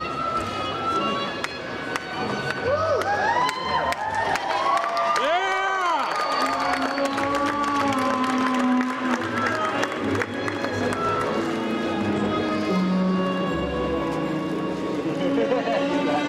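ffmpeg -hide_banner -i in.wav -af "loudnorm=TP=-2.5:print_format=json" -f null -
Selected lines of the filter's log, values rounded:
"input_i" : "-23.8",
"input_tp" : "-9.4",
"input_lra" : "2.0",
"input_thresh" : "-33.8",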